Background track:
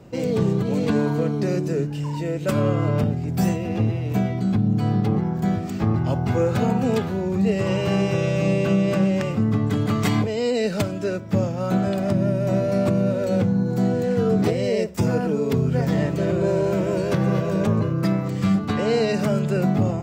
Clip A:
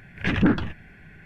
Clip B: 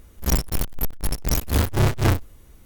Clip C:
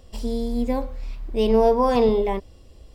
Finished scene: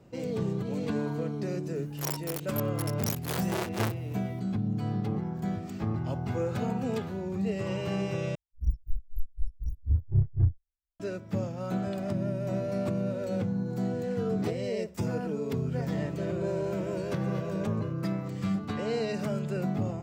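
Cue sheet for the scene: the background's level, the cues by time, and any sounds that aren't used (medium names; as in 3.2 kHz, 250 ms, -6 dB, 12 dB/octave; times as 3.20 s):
background track -10 dB
1.75 s: add B -7 dB + elliptic high-pass 350 Hz
8.35 s: replace with B -3 dB + spectral contrast expander 2.5:1
not used: A, C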